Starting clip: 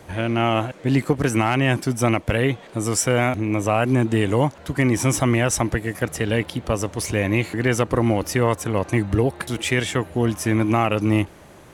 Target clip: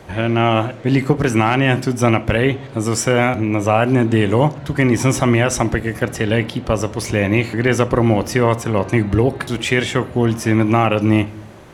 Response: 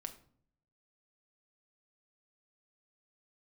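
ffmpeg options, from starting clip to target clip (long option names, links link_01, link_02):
-filter_complex "[0:a]asplit=2[link_01][link_02];[1:a]atrim=start_sample=2205,lowpass=6800[link_03];[link_02][link_03]afir=irnorm=-1:irlink=0,volume=2.5dB[link_04];[link_01][link_04]amix=inputs=2:normalize=0,volume=-1dB"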